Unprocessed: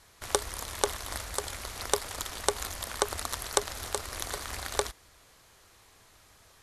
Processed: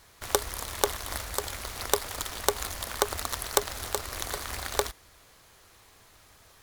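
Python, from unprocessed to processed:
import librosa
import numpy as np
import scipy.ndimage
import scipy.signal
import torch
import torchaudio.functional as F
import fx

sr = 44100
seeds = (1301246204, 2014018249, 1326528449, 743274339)

y = np.repeat(x[::2], 2)[:len(x)]
y = y * 10.0 ** (2.0 / 20.0)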